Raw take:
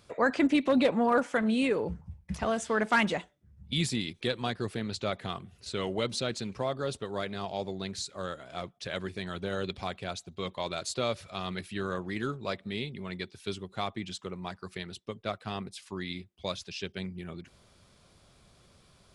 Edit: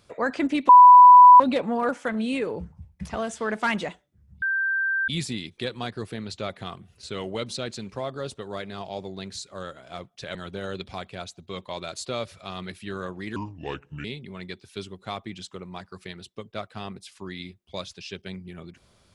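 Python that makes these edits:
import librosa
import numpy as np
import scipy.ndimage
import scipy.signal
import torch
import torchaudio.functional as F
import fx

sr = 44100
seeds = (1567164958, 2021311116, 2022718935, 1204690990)

y = fx.edit(x, sr, fx.insert_tone(at_s=0.69, length_s=0.71, hz=991.0, db=-6.0),
    fx.insert_tone(at_s=3.71, length_s=0.66, hz=1570.0, db=-21.5),
    fx.cut(start_s=8.98, length_s=0.26),
    fx.speed_span(start_s=12.25, length_s=0.5, speed=0.73), tone=tone)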